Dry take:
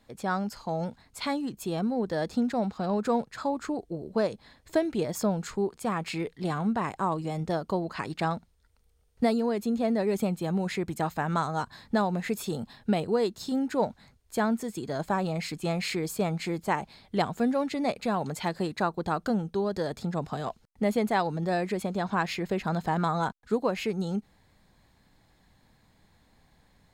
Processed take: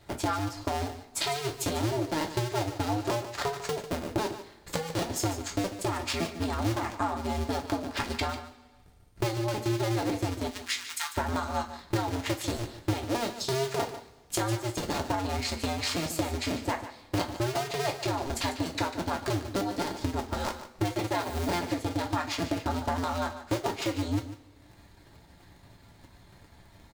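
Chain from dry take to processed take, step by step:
sub-harmonics by changed cycles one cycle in 2, inverted
0:10.47–0:11.16: Bessel high-pass filter 1,900 Hz, order 8
dynamic equaliser 5,200 Hz, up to +6 dB, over −50 dBFS, Q 0.81
transient designer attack +3 dB, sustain −8 dB
0:21.13–0:21.57: bit-depth reduction 8 bits, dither triangular
downward compressor 6 to 1, threshold −35 dBFS, peak gain reduction 17 dB
single-tap delay 147 ms −12.5 dB
coupled-rooms reverb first 0.23 s, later 1.6 s, from −21 dB, DRR 1.5 dB
level +5 dB

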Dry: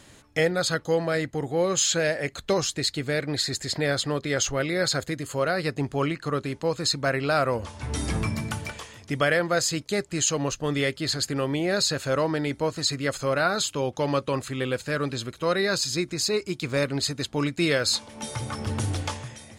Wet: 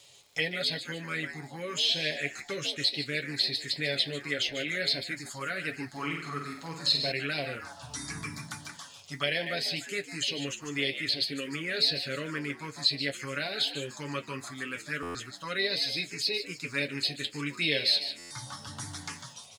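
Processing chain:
meter weighting curve D
on a send: echo with shifted repeats 149 ms, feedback 40%, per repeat +76 Hz, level −9.5 dB
on the sum: phaser swept by the level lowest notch 250 Hz, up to 1,300 Hz, full sweep at −16 dBFS
comb filter 7.1 ms, depth 52%
surface crackle 210 per second −40 dBFS
flanger 0.19 Hz, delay 9.4 ms, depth 5.3 ms, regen −51%
0:05.91–0:07.12: flutter between parallel walls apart 8.3 metres, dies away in 0.53 s
buffer that repeats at 0:15.02/0:18.18, samples 512, times 10
level −5 dB

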